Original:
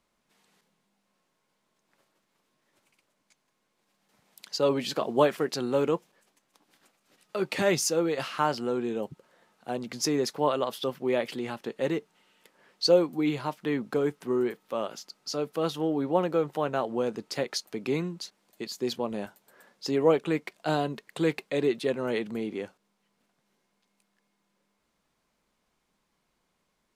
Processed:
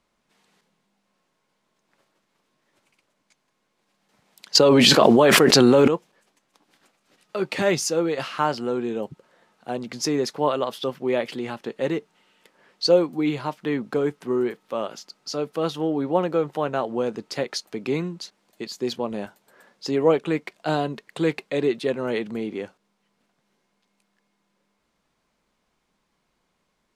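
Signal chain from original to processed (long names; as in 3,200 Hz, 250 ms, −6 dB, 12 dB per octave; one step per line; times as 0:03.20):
high-shelf EQ 12,000 Hz −11.5 dB
0:04.55–0:05.88: envelope flattener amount 100%
level +3.5 dB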